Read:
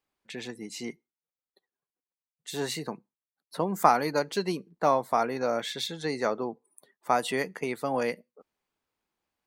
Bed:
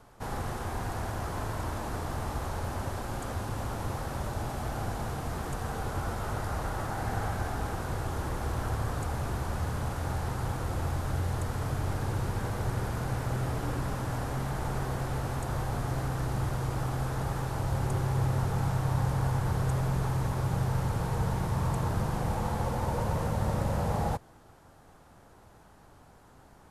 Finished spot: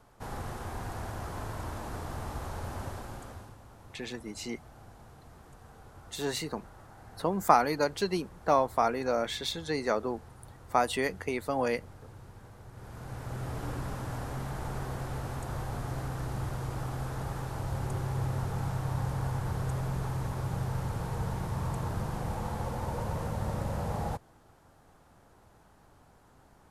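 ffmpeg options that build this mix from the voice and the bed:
-filter_complex "[0:a]adelay=3650,volume=-1dB[a];[1:a]volume=10.5dB,afade=t=out:st=2.85:d=0.73:silence=0.188365,afade=t=in:st=12.72:d=0.92:silence=0.188365[b];[a][b]amix=inputs=2:normalize=0"

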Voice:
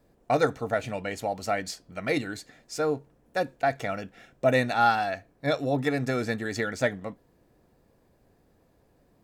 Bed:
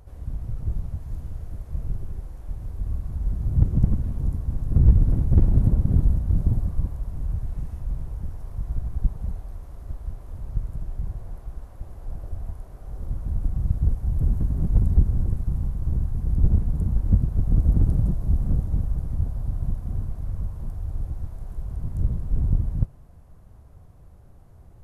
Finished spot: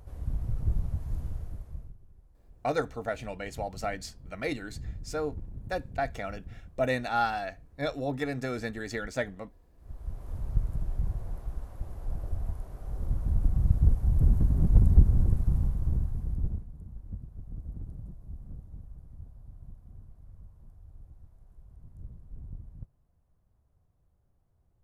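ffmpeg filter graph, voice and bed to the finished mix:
-filter_complex "[0:a]adelay=2350,volume=-5.5dB[a];[1:a]volume=22dB,afade=t=out:st=1.25:d=0.69:silence=0.0749894,afade=t=in:st=9.75:d=0.57:silence=0.0707946,afade=t=out:st=15.55:d=1.12:silence=0.0944061[b];[a][b]amix=inputs=2:normalize=0"

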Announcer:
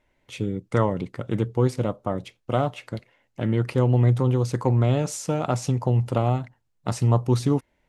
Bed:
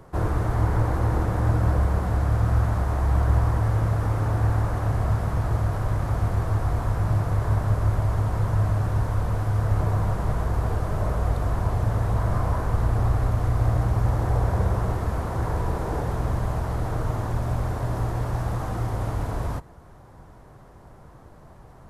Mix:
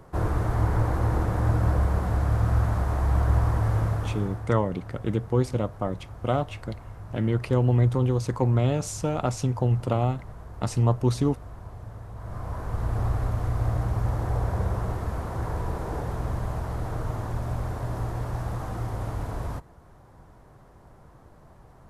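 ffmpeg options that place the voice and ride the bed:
-filter_complex "[0:a]adelay=3750,volume=-2dB[a];[1:a]volume=11.5dB,afade=t=out:st=3.79:d=0.7:silence=0.16788,afade=t=in:st=12.15:d=0.86:silence=0.223872[b];[a][b]amix=inputs=2:normalize=0"

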